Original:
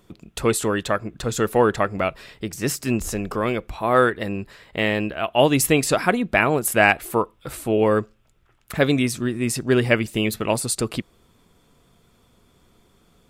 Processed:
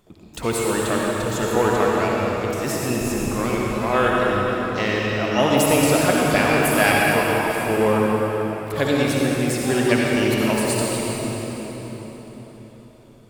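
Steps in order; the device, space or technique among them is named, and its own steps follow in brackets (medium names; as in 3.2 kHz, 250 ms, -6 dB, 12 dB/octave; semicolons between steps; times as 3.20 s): shimmer-style reverb (harmony voices +12 st -12 dB; reverberation RT60 4.6 s, pre-delay 53 ms, DRR -4 dB); trim -4 dB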